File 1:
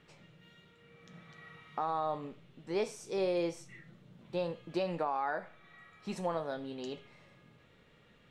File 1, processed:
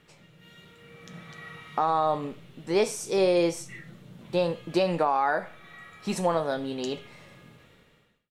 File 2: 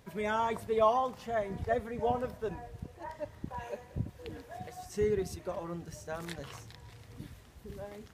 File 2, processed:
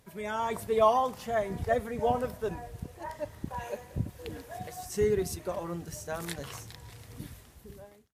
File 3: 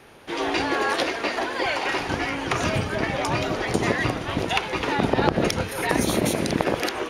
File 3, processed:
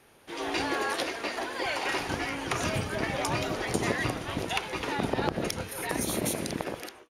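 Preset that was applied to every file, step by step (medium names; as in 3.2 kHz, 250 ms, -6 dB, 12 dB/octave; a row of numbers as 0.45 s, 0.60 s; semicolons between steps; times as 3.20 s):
fade out at the end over 0.85 s; peaking EQ 12 kHz +9 dB 1.3 oct; level rider gain up to 7 dB; peak normalisation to -12 dBFS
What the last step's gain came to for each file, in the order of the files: +2.5 dB, -4.0 dB, -11.0 dB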